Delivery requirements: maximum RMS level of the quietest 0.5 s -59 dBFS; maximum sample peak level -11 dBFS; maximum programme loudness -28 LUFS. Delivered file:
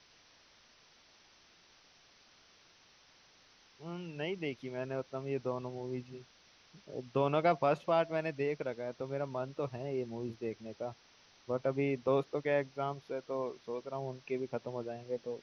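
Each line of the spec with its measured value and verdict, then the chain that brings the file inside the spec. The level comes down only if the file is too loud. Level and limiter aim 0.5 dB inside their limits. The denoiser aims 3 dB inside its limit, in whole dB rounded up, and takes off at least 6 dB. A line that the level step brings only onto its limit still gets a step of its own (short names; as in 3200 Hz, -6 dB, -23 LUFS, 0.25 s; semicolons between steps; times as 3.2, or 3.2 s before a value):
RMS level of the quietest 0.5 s -64 dBFS: OK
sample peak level -17.5 dBFS: OK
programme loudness -36.5 LUFS: OK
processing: none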